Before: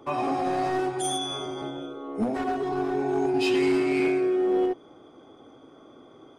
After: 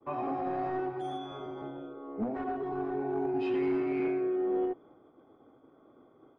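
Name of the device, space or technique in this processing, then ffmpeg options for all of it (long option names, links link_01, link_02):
hearing-loss simulation: -af "lowpass=1700,agate=range=-33dB:threshold=-47dB:ratio=3:detection=peak,volume=-6.5dB"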